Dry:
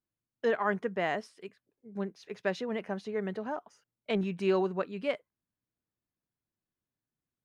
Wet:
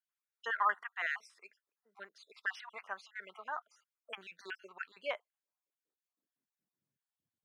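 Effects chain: random spectral dropouts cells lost 45%; high-pass sweep 1200 Hz -> 110 Hz, 4.84–7.13; gain -2.5 dB

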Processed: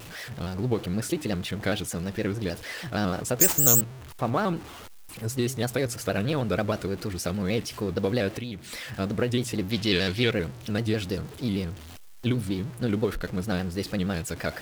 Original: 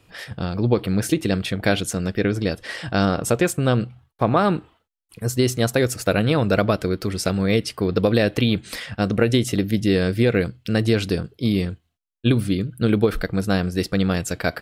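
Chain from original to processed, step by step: zero-crossing step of -29 dBFS; 3.4–3.81 careless resampling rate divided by 6×, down none, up zero stuff; 8.29–8.89 compressor 5:1, threshold -24 dBFS, peak gain reduction 9 dB; 9.71–10.31 bell 3400 Hz +13.5 dB 1.8 oct; shaped vibrato square 6.4 Hz, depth 100 cents; gain -8.5 dB

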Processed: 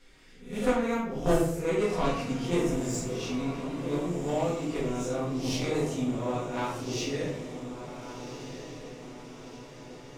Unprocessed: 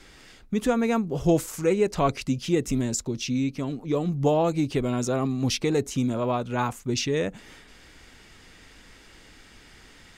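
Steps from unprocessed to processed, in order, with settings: spectral swells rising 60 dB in 0.48 s; 3.99–4.75 transient shaper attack -12 dB, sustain -8 dB; added harmonics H 3 -11 dB, 5 -30 dB, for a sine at -9 dBFS; diffused feedback echo 1.47 s, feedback 54%, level -10 dB; shoebox room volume 130 m³, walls mixed, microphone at 1.8 m; gain -6.5 dB

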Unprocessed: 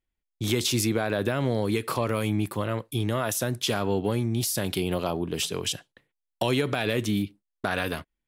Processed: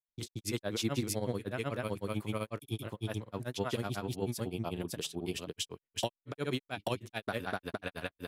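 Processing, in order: grains, grains 16/s, spray 0.509 s, pitch spread up and down by 0 st; upward expander 1.5:1, over -48 dBFS; gain -4.5 dB

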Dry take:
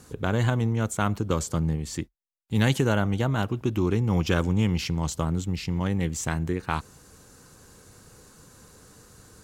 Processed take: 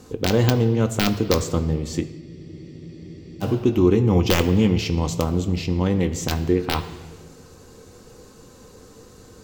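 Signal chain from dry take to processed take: wrapped overs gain 11.5 dB; fifteen-band EQ 400 Hz +7 dB, 1600 Hz -5 dB, 10000 Hz -11 dB; on a send at -6 dB: reverb RT60 1.4 s, pre-delay 4 ms; on the sum: spectral freeze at 2.23, 1.20 s; gain +4 dB

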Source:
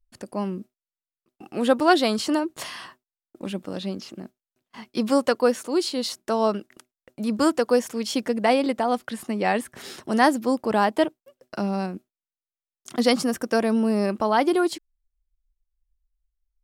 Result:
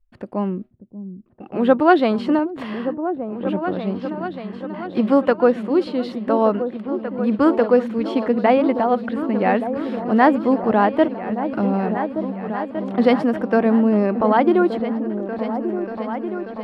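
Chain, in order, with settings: air absorption 500 m; on a send: repeats that get brighter 0.587 s, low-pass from 200 Hz, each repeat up 2 oct, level -6 dB; on the sum: gain +6 dB

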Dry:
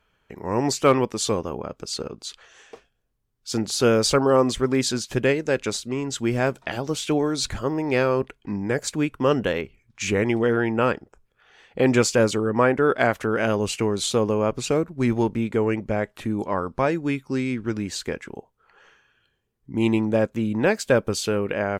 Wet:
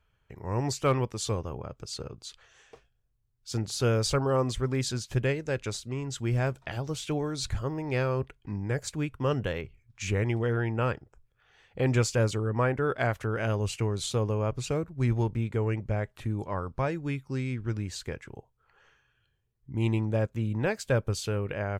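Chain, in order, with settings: resonant low shelf 160 Hz +8.5 dB, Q 1.5; gain -8 dB

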